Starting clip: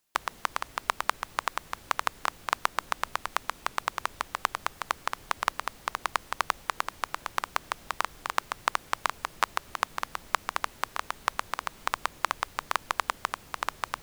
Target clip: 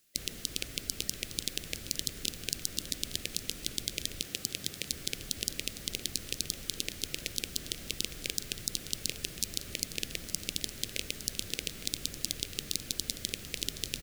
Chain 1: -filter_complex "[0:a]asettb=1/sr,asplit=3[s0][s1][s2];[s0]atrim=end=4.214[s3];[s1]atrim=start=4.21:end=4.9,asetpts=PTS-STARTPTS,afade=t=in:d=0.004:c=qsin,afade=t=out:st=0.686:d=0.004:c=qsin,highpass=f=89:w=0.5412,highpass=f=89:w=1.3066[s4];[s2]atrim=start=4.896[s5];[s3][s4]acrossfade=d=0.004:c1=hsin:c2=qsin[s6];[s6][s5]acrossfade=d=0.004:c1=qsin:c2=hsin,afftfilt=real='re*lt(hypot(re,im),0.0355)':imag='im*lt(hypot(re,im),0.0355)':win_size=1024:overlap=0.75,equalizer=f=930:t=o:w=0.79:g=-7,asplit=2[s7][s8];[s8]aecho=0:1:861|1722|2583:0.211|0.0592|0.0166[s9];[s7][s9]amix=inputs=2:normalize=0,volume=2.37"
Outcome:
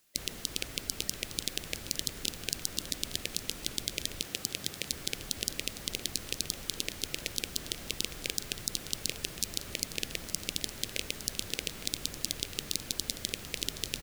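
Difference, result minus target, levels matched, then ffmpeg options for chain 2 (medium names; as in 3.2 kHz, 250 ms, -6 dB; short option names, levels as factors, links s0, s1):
1 kHz band +6.0 dB
-filter_complex "[0:a]asettb=1/sr,asplit=3[s0][s1][s2];[s0]atrim=end=4.214[s3];[s1]atrim=start=4.21:end=4.9,asetpts=PTS-STARTPTS,afade=t=in:d=0.004:c=qsin,afade=t=out:st=0.686:d=0.004:c=qsin,highpass=f=89:w=0.5412,highpass=f=89:w=1.3066[s4];[s2]atrim=start=4.896[s5];[s3][s4]acrossfade=d=0.004:c1=hsin:c2=qsin[s6];[s6][s5]acrossfade=d=0.004:c1=qsin:c2=hsin,afftfilt=real='re*lt(hypot(re,im),0.0355)':imag='im*lt(hypot(re,im),0.0355)':win_size=1024:overlap=0.75,equalizer=f=930:t=o:w=0.79:g=-18.5,asplit=2[s7][s8];[s8]aecho=0:1:861|1722|2583:0.211|0.0592|0.0166[s9];[s7][s9]amix=inputs=2:normalize=0,volume=2.37"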